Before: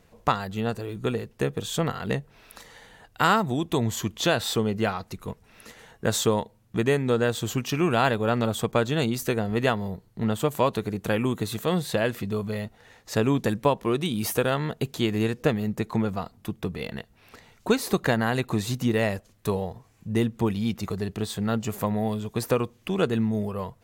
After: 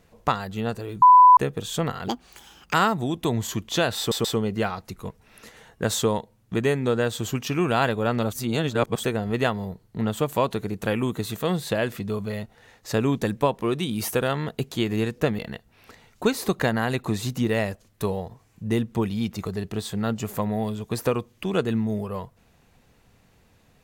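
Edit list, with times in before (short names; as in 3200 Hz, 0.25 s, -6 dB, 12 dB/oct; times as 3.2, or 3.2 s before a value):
1.02–1.37 bleep 998 Hz -8 dBFS
2.08–3.22 speed 174%
4.47 stutter 0.13 s, 3 plays
8.55–9.26 reverse
15.61–16.83 cut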